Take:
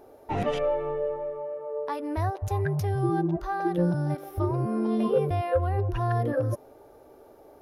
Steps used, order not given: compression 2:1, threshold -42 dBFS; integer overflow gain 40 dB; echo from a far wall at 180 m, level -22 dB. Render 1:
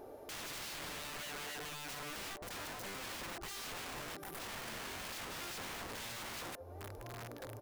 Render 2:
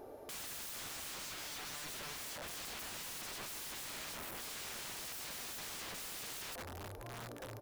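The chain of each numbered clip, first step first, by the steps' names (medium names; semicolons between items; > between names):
echo from a far wall > compression > integer overflow; echo from a far wall > integer overflow > compression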